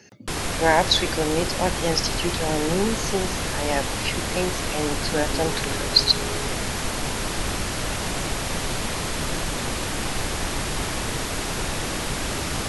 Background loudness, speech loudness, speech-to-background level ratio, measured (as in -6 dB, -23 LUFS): -26.5 LUFS, -24.0 LUFS, 2.5 dB